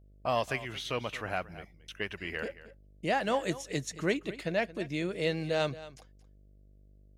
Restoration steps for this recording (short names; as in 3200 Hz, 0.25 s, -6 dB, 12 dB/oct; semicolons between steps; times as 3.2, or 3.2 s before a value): de-hum 49.9 Hz, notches 13; inverse comb 0.224 s -16.5 dB